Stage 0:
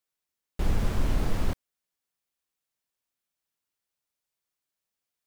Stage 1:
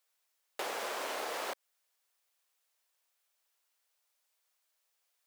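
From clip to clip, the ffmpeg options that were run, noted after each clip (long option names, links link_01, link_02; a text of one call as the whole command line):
ffmpeg -i in.wav -af "highpass=frequency=490:width=0.5412,highpass=frequency=490:width=1.3066,acompressor=threshold=-42dB:ratio=6,volume=7.5dB" out.wav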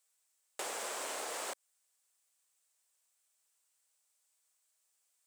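ffmpeg -i in.wav -af "equalizer=frequency=8100:width_type=o:width=0.72:gain=13,volume=-4dB" out.wav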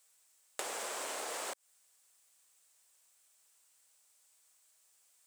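ffmpeg -i in.wav -af "acompressor=threshold=-45dB:ratio=12,volume=8.5dB" out.wav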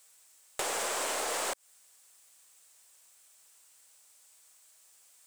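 ffmpeg -i in.wav -af "aeval=exprs='(tanh(39.8*val(0)+0.2)-tanh(0.2))/39.8':channel_layout=same,volume=8.5dB" out.wav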